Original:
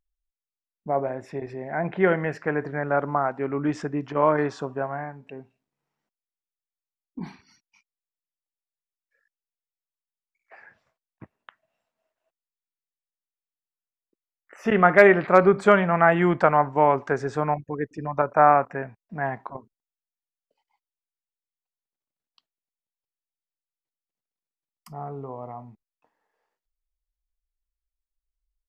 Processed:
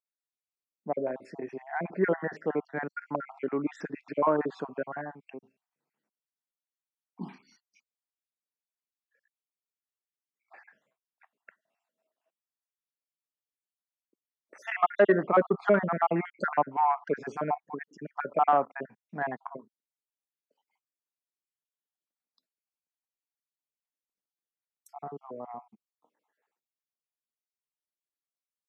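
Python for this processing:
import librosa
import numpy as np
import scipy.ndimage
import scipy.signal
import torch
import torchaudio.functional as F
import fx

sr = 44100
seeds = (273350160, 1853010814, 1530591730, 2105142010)

y = fx.spec_dropout(x, sr, seeds[0], share_pct=46)
y = 10.0 ** (-8.5 / 20.0) * np.tanh(y / 10.0 ** (-8.5 / 20.0))
y = fx.env_lowpass_down(y, sr, base_hz=1800.0, full_db=-21.0)
y = scipy.signal.sosfilt(scipy.signal.butter(4, 190.0, 'highpass', fs=sr, output='sos'), y)
y = fx.low_shelf(y, sr, hz=250.0, db=5.0)
y = y * 10.0 ** (-3.0 / 20.0)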